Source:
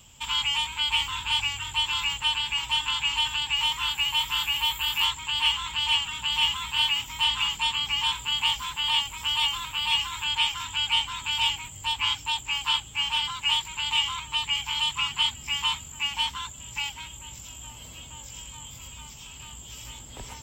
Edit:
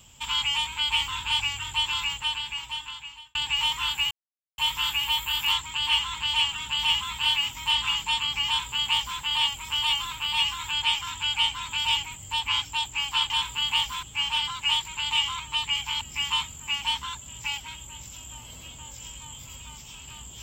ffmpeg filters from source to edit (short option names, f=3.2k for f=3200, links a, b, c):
-filter_complex "[0:a]asplit=6[a][b][c][d][e][f];[a]atrim=end=3.35,asetpts=PTS-STARTPTS,afade=t=out:st=1.86:d=1.49[g];[b]atrim=start=3.35:end=4.11,asetpts=PTS-STARTPTS,afade=t=in:d=0.004:c=hsin,afade=t=out:st=0.756:d=0.004:c=hsin,apad=pad_dur=0.47[h];[c]atrim=start=4.11:end=12.832,asetpts=PTS-STARTPTS,afade=t=in:d=0.004:c=hsin[i];[d]atrim=start=7.998:end=8.732[j];[e]atrim=start=12.828:end=14.812[k];[f]atrim=start=15.328[l];[g][h][i]concat=n=3:v=0:a=1[m];[m][j]acrossfade=d=0.004:c1=hsin:c2=hsin[n];[n][k]acrossfade=d=0.004:c1=hsin:c2=hsin[o];[o][l]acrossfade=d=0.004:c1=hsin:c2=hsin"